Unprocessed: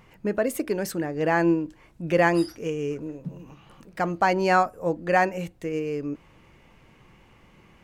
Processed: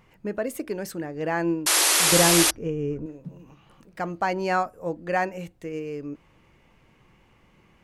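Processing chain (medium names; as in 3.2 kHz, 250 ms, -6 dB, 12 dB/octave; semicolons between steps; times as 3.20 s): 2.12–3.06 s: tilt EQ -3 dB/octave; 1.66–2.51 s: painted sound noise 290–12000 Hz -16 dBFS; trim -4 dB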